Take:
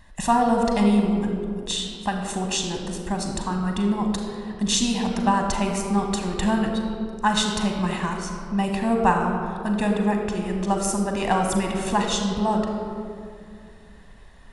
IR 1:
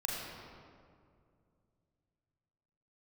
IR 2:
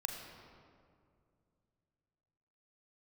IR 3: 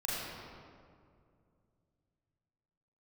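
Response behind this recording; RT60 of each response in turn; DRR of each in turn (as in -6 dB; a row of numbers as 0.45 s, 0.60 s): 2; 2.3 s, 2.3 s, 2.3 s; -3.5 dB, 2.5 dB, -7.5 dB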